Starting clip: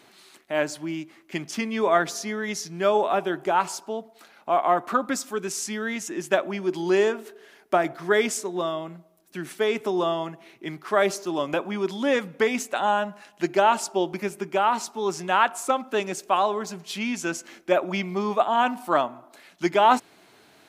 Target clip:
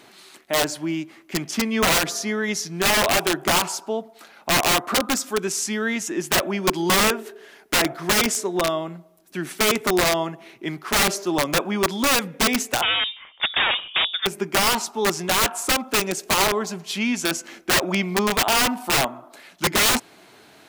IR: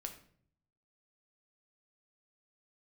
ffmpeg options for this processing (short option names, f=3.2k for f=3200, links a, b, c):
-filter_complex "[0:a]aeval=exprs='(mod(7.94*val(0)+1,2)-1)/7.94':c=same,asettb=1/sr,asplit=3[a][b][c];[a]atrim=end=12.824[d];[b]atrim=start=12.82:end=14.26,asetpts=PTS-STARTPTS,afade=t=in:d=0.004:c=qsin,afade=t=out:st=1.436:d=0.004:c=qsin,lowpass=f=3.2k:t=q:w=0.5098,lowpass=f=3.2k:t=q:w=0.6013,lowpass=f=3.2k:t=q:w=0.9,lowpass=f=3.2k:t=q:w=2.563,afreqshift=-3800[e];[c]atrim=start=14.256[f];[d][e]acrossfade=d=0.004:c1=hsin:c2=qsin[g];[g][f]acrossfade=d=0.004:c1=qsin:c2=hsin,volume=5dB"